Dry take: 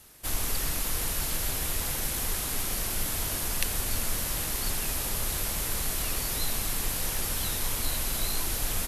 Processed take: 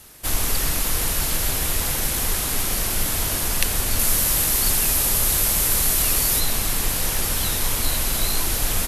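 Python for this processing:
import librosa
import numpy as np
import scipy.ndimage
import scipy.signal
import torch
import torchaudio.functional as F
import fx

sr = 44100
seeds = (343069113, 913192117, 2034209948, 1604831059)

y = fx.high_shelf(x, sr, hz=6500.0, db=6.5, at=(3.99, 6.4))
y = F.gain(torch.from_numpy(y), 7.5).numpy()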